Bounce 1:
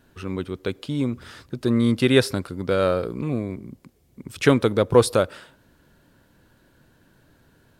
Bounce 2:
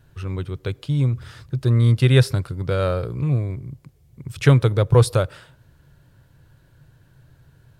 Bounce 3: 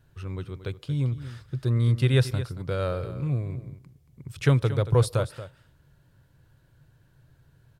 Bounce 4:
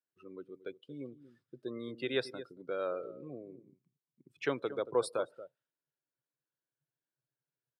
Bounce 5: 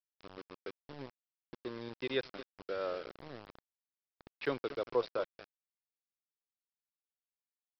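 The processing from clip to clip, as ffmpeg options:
ffmpeg -i in.wav -af "lowshelf=frequency=170:width_type=q:width=3:gain=7.5,volume=-1.5dB" out.wav
ffmpeg -i in.wav -af "aecho=1:1:229:0.211,volume=-6.5dB" out.wav
ffmpeg -i in.wav -af "afftdn=noise_reduction=25:noise_floor=-38,highpass=frequency=270:width=0.5412,highpass=frequency=270:width=1.3066,volume=-5.5dB" out.wav
ffmpeg -i in.wav -af "acompressor=mode=upward:threshold=-41dB:ratio=2.5,aresample=11025,aeval=exprs='val(0)*gte(abs(val(0)),0.00944)':channel_layout=same,aresample=44100,volume=-1.5dB" out.wav

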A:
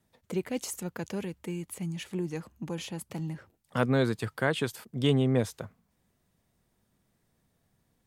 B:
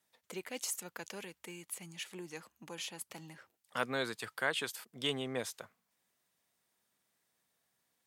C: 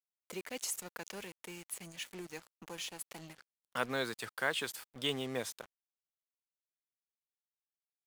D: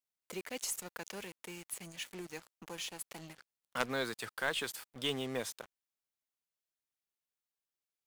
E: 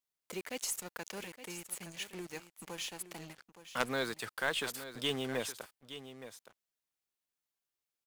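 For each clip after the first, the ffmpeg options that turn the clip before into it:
ffmpeg -i in.wav -af "highpass=frequency=1400:poles=1" out.wav
ffmpeg -i in.wav -af "acrusher=bits=7:mix=0:aa=0.5" out.wav
ffmpeg -i in.wav -af "aeval=exprs='0.158*(cos(1*acos(clip(val(0)/0.158,-1,1)))-cos(1*PI/2))+0.0251*(cos(2*acos(clip(val(0)/0.158,-1,1)))-cos(2*PI/2))+0.0398*(cos(3*acos(clip(val(0)/0.158,-1,1)))-cos(3*PI/2))+0.0224*(cos(5*acos(clip(val(0)/0.158,-1,1)))-cos(5*PI/2))':channel_layout=same,volume=1dB" out.wav
ffmpeg -i in.wav -af "aecho=1:1:868:0.237,volume=1dB" out.wav

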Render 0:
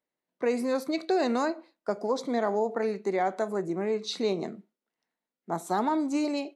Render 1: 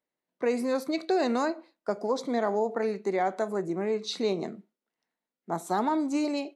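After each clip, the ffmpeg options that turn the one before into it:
ffmpeg -i in.wav -af anull out.wav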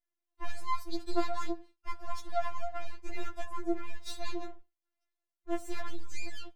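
ffmpeg -i in.wav -af "aeval=exprs='max(val(0),0)':channel_layout=same,afftfilt=real='re*4*eq(mod(b,16),0)':imag='im*4*eq(mod(b,16),0)':win_size=2048:overlap=0.75,volume=-1.5dB" out.wav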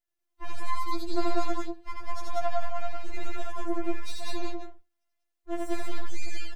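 ffmpeg -i in.wav -af "aecho=1:1:81.63|189.5:0.794|0.891" out.wav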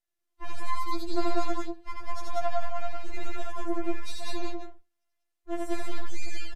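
ffmpeg -i in.wav -af "aresample=32000,aresample=44100" out.wav

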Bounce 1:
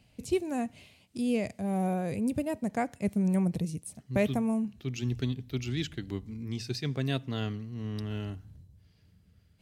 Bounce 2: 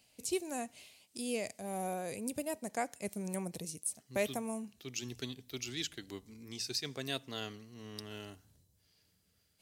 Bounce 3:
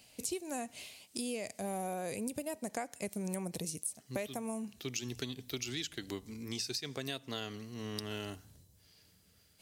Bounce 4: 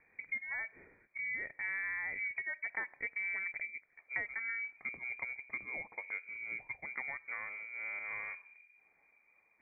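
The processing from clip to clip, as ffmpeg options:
ffmpeg -i in.wav -af "bass=frequency=250:gain=-14,treble=frequency=4000:gain=11,volume=-4dB" out.wav
ffmpeg -i in.wav -af "acompressor=threshold=-42dB:ratio=12,volume=7.5dB" out.wav
ffmpeg -i in.wav -af "lowpass=frequency=2100:width_type=q:width=0.5098,lowpass=frequency=2100:width_type=q:width=0.6013,lowpass=frequency=2100:width_type=q:width=0.9,lowpass=frequency=2100:width_type=q:width=2.563,afreqshift=-2500" out.wav

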